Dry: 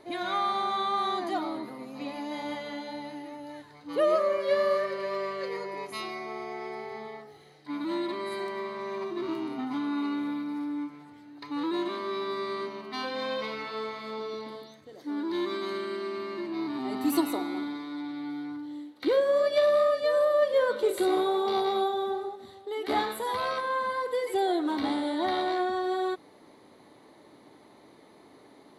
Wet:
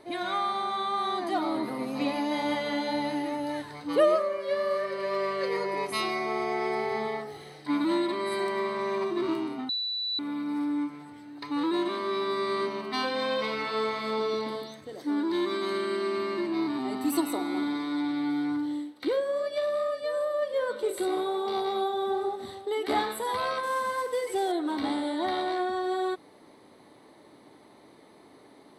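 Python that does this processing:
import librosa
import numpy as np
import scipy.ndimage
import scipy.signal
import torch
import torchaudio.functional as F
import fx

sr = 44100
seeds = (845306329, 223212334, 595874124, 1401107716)

y = fx.cvsd(x, sr, bps=64000, at=(23.63, 24.52))
y = fx.edit(y, sr, fx.bleep(start_s=9.69, length_s=0.5, hz=3960.0, db=-22.5), tone=tone)
y = fx.peak_eq(y, sr, hz=8000.0, db=11.0, octaves=0.21)
y = fx.notch(y, sr, hz=7100.0, q=5.1)
y = fx.rider(y, sr, range_db=10, speed_s=0.5)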